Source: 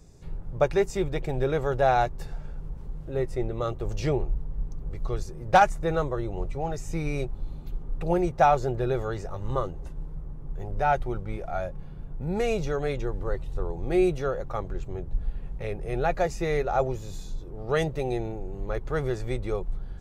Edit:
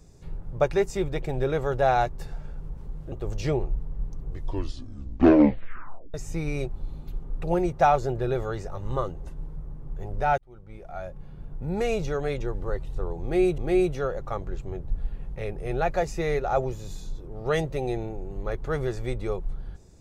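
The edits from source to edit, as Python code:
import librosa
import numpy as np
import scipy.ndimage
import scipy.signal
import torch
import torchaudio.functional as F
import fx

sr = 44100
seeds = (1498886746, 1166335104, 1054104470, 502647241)

y = fx.edit(x, sr, fx.cut(start_s=3.12, length_s=0.59),
    fx.tape_stop(start_s=4.78, length_s=1.95),
    fx.fade_in_span(start_s=10.97, length_s=1.17),
    fx.repeat(start_s=13.81, length_s=0.36, count=2), tone=tone)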